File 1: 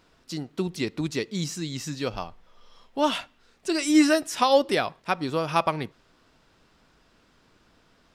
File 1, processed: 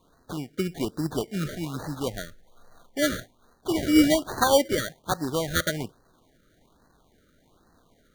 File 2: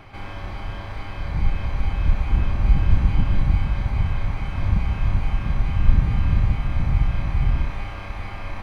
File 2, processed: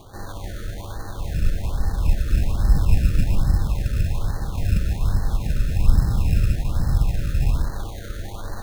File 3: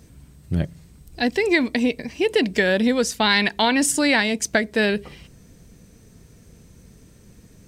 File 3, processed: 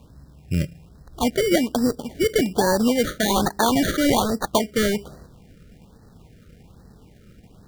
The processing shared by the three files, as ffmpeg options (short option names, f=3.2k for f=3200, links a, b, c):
-af "acrusher=samples=17:mix=1:aa=0.000001,afftfilt=real='re*(1-between(b*sr/1024,850*pow(2800/850,0.5+0.5*sin(2*PI*1.2*pts/sr))/1.41,850*pow(2800/850,0.5+0.5*sin(2*PI*1.2*pts/sr))*1.41))':imag='im*(1-between(b*sr/1024,850*pow(2800/850,0.5+0.5*sin(2*PI*1.2*pts/sr))/1.41,850*pow(2800/850,0.5+0.5*sin(2*PI*1.2*pts/sr))*1.41))':win_size=1024:overlap=0.75"